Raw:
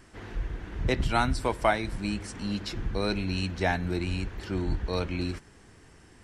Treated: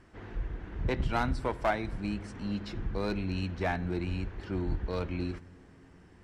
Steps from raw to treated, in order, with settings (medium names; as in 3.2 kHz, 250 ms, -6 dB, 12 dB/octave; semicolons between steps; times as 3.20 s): low-pass 2 kHz 6 dB/octave; one-sided clip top -21.5 dBFS; on a send: reverberation RT60 3.6 s, pre-delay 50 ms, DRR 23 dB; on the sum: trim -2.5 dB